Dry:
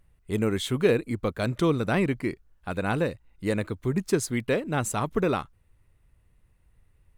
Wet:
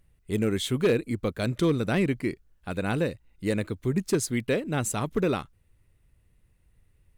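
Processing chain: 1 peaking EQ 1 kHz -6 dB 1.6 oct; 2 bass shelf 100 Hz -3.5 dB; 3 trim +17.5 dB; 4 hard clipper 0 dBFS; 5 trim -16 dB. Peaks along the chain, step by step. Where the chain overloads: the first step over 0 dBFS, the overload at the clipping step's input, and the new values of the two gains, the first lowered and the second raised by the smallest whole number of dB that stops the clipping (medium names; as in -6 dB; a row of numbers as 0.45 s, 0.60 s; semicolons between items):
-10.0 dBFS, -10.5 dBFS, +7.0 dBFS, 0.0 dBFS, -16.0 dBFS; step 3, 7.0 dB; step 3 +10.5 dB, step 5 -9 dB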